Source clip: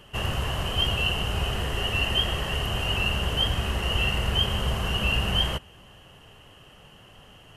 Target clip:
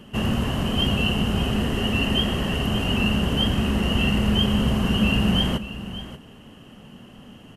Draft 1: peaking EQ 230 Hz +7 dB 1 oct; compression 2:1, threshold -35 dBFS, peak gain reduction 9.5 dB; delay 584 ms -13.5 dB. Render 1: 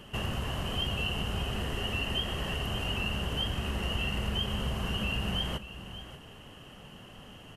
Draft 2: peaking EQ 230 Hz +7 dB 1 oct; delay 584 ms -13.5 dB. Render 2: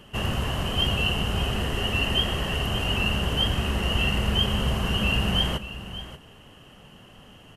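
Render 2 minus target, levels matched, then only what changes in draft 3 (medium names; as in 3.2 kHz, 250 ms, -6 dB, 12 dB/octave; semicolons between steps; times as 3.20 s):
250 Hz band -6.0 dB
change: peaking EQ 230 Hz +18 dB 1 oct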